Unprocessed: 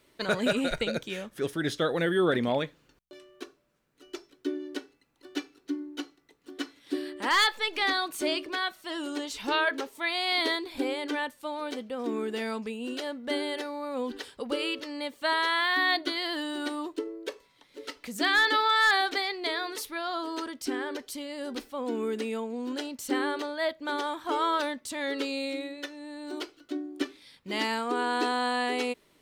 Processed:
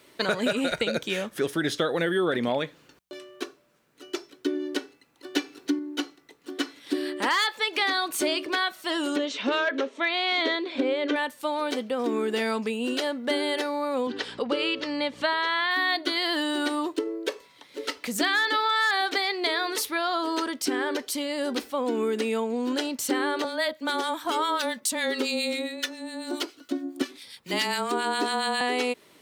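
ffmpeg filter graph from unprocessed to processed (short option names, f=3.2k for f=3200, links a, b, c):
-filter_complex "[0:a]asettb=1/sr,asplit=3[a][b][c];[a]atrim=end=5.344[d];[b]atrim=start=5.34:end=5.79,asetpts=PTS-STARTPTS,afade=t=in:d=0.004:c=qsin,afade=t=out:st=0.446:d=0.004:c=qsin,bandreject=f=1.3k:w=20,acontrast=30[e];[c]atrim=start=5.786[f];[d][e]acrossfade=d=0.004:c1=hsin:c2=qsin[g];[g][f]acrossfade=d=0.004:c1=qsin:c2=hsin,asettb=1/sr,asplit=3[h][i][j];[h]atrim=end=9.164[k];[i]atrim=start=9.16:end=11.16,asetpts=PTS-STARTPTS,afade=t=in:d=0.004:c=qsin,afade=t=out:st=1.996:d=0.004:c=qsin,asoftclip=type=hard:threshold=-21.5dB,highpass=230,equalizer=f=250:t=q:w=4:g=8,equalizer=f=560:t=q:w=4:g=7,equalizer=f=860:t=q:w=4:g=-7,equalizer=f=4.8k:t=q:w=4:g=-9,lowpass=f=5.5k:w=0.5412,lowpass=f=5.5k:w=1.3066[l];[j]atrim=start=11.156[m];[k][l]acrossfade=d=0.004:c1=hsin:c2=qsin[n];[n][m]acrossfade=d=0.004:c1=qsin:c2=hsin,asettb=1/sr,asplit=3[o][p][q];[o]atrim=end=14.074[r];[p]atrim=start=14.07:end=15.71,asetpts=PTS-STARTPTS,afade=t=in:d=0.004:c=qsin,afade=t=out:st=1.636:d=0.004:c=qsin,aeval=exprs='val(0)+0.002*(sin(2*PI*60*n/s)+sin(2*PI*2*60*n/s)/2+sin(2*PI*3*60*n/s)/3+sin(2*PI*4*60*n/s)/4+sin(2*PI*5*60*n/s)/5)':c=same,highpass=130,lowpass=5.2k,acompressor=mode=upward:threshold=-38dB:ratio=2.5:attack=3.2:release=140:knee=2.83:detection=peak[s];[q]atrim=start=15.706[t];[r][s]acrossfade=d=0.004:c1=hsin:c2=qsin[u];[u][t]acrossfade=d=0.004:c1=qsin:c2=hsin,asettb=1/sr,asplit=3[v][w][x];[v]atrim=end=23.444[y];[w]atrim=start=23.44:end=28.61,asetpts=PTS-STARTPTS,afade=t=in:d=0.004:c=qsin,afade=t=out:st=5.166:d=0.004:c=qsin,highshelf=f=4.8k:g=9,acrossover=split=1300[z][aa];[z]aeval=exprs='val(0)*(1-0.7/2+0.7/2*cos(2*PI*7.3*n/s))':c=same[ab];[aa]aeval=exprs='val(0)*(1-0.7/2-0.7/2*cos(2*PI*7.3*n/s))':c=same[ac];[ab][ac]amix=inputs=2:normalize=0,afreqshift=-17[ad];[x]atrim=start=28.606[ae];[y][ad]acrossfade=d=0.004:c1=hsin:c2=qsin[af];[af][ae]acrossfade=d=0.004:c1=qsin:c2=hsin,highpass=66,lowshelf=f=150:g=-7.5,acompressor=threshold=-32dB:ratio=4,volume=9dB"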